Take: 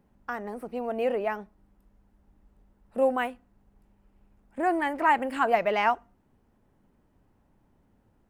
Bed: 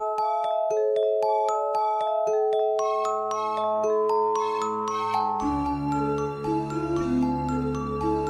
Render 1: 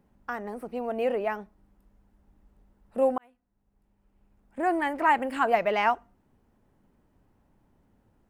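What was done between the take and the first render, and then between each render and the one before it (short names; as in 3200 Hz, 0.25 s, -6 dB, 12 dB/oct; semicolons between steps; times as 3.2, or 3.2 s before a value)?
3.18–4.74 fade in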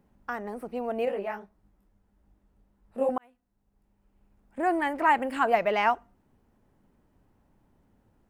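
1.05–3.09 detuned doubles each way 56 cents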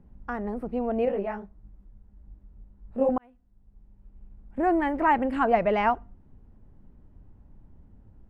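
RIAA curve playback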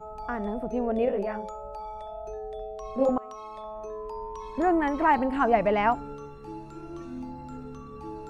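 add bed -14 dB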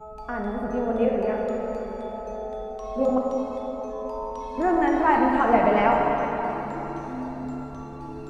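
plate-style reverb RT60 4.6 s, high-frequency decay 0.65×, DRR -1 dB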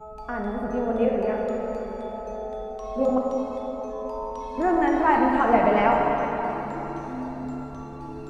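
nothing audible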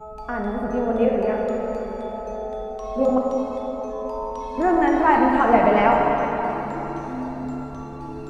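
gain +3 dB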